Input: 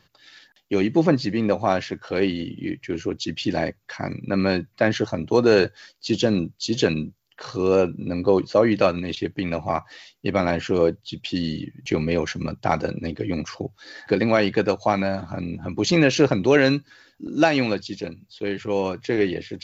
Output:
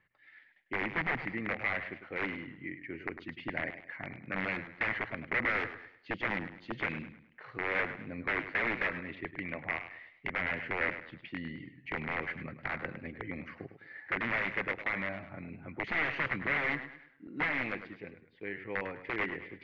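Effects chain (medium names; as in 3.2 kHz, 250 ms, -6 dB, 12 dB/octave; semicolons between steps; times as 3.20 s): integer overflow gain 13.5 dB; four-pole ladder low-pass 2.2 kHz, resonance 75%; modulated delay 103 ms, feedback 37%, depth 106 cents, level -11 dB; trim -4 dB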